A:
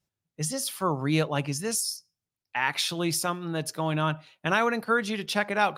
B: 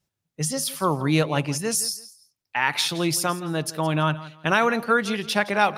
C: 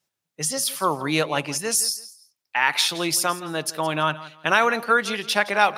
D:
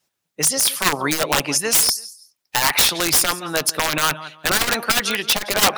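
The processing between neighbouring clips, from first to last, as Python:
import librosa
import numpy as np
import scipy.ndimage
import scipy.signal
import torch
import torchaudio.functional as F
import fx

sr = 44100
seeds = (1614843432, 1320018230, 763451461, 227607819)

y1 = fx.echo_feedback(x, sr, ms=167, feedback_pct=24, wet_db=-17.0)
y1 = y1 * 10.0 ** (4.0 / 20.0)
y2 = fx.highpass(y1, sr, hz=530.0, slope=6)
y2 = y2 * 10.0 ** (3.0 / 20.0)
y3 = (np.mod(10.0 ** (14.5 / 20.0) * y2 + 1.0, 2.0) - 1.0) / 10.0 ** (14.5 / 20.0)
y3 = fx.hpss(y3, sr, part='percussive', gain_db=7)
y3 = fx.transformer_sat(y3, sr, knee_hz=200.0)
y3 = y3 * 10.0 ** (1.5 / 20.0)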